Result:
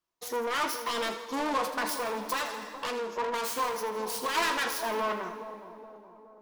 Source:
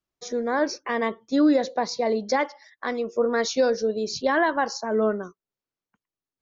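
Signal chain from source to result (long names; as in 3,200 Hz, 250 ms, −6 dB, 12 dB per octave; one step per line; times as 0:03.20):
phase distortion by the signal itself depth 0.65 ms
coupled-rooms reverb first 0.21 s, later 2.1 s, from −21 dB, DRR 6 dB
soft clipping −26.5 dBFS, distortion −7 dB
low-shelf EQ 230 Hz −10 dB
echo with a time of its own for lows and highs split 950 Hz, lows 419 ms, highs 81 ms, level −10.5 dB
0:01.93–0:04.35: downward compressor, threshold −30 dBFS, peak gain reduction 3.5 dB
parametric band 1,000 Hz +9.5 dB 0.31 octaves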